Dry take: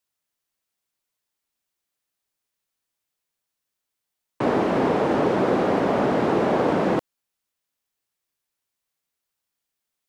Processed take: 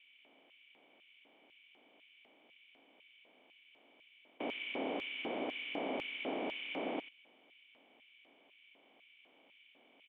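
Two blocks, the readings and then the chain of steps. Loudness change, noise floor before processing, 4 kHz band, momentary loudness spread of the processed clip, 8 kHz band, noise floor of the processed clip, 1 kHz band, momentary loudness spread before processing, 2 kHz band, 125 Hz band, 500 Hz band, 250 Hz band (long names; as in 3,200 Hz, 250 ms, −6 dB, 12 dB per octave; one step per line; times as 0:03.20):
−18.0 dB, −83 dBFS, −4.0 dB, 4 LU, can't be measured, −67 dBFS, −20.5 dB, 3 LU, −10.0 dB, −32.0 dB, −20.5 dB, −20.0 dB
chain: compressor on every frequency bin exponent 0.4
formant resonators in series i
parametric band 320 Hz −6 dB 1.8 octaves
single-tap delay 91 ms −8.5 dB
auto-filter high-pass square 2 Hz 710–2,500 Hz
level +2.5 dB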